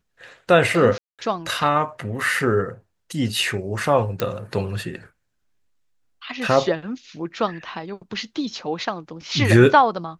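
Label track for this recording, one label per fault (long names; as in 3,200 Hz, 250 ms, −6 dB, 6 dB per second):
0.980000	1.190000	drop-out 207 ms
4.200000	4.200000	click −9 dBFS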